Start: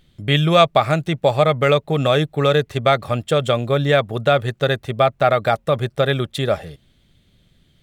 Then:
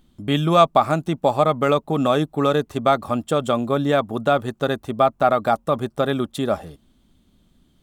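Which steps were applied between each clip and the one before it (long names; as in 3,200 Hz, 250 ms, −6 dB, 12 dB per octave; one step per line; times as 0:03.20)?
octave-band graphic EQ 125/250/500/1,000/2,000/4,000 Hz −10/+8/−6/+6/−10/−5 dB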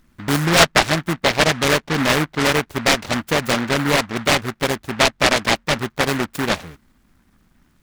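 short delay modulated by noise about 1,300 Hz, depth 0.29 ms
level +1 dB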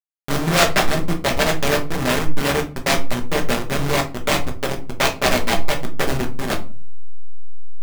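hold until the input has moved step −14.5 dBFS
rectangular room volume 200 cubic metres, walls furnished, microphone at 1.2 metres
level −4 dB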